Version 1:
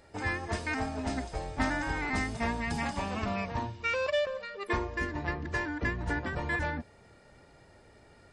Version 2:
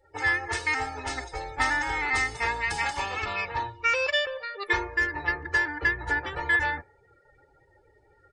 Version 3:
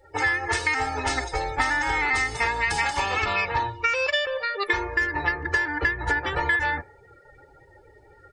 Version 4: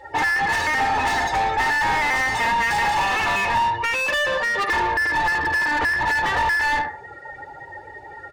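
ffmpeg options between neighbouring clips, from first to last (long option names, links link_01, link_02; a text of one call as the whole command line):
ffmpeg -i in.wav -af "afftdn=noise_reduction=25:noise_floor=-52,tiltshelf=frequency=680:gain=-7.5,aecho=1:1:2.3:0.86" out.wav
ffmpeg -i in.wav -af "acompressor=threshold=-29dB:ratio=6,volume=8.5dB" out.wav
ffmpeg -i in.wav -filter_complex "[0:a]aecho=1:1:1.1:0.54,asplit=2[link_01][link_02];[link_02]adelay=73,lowpass=frequency=2500:poles=1,volume=-11dB,asplit=2[link_03][link_04];[link_04]adelay=73,lowpass=frequency=2500:poles=1,volume=0.23,asplit=2[link_05][link_06];[link_06]adelay=73,lowpass=frequency=2500:poles=1,volume=0.23[link_07];[link_01][link_03][link_05][link_07]amix=inputs=4:normalize=0,asplit=2[link_08][link_09];[link_09]highpass=frequency=720:poles=1,volume=30dB,asoftclip=type=tanh:threshold=-7dB[link_10];[link_08][link_10]amix=inputs=2:normalize=0,lowpass=frequency=1700:poles=1,volume=-6dB,volume=-5dB" out.wav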